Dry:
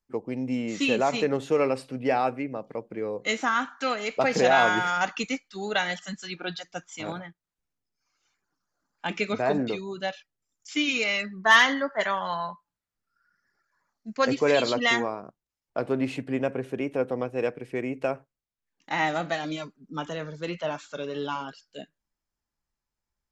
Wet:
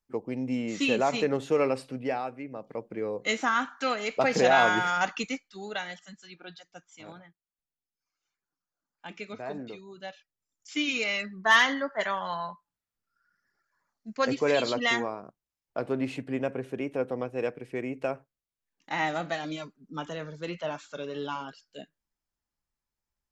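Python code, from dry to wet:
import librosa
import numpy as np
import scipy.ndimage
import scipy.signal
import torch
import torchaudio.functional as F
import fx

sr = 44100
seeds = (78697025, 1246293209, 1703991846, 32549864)

y = fx.gain(x, sr, db=fx.line((1.92, -1.5), (2.29, -10.0), (2.83, -1.0), (5.1, -1.0), (6.13, -12.0), (9.85, -12.0), (10.8, -3.0)))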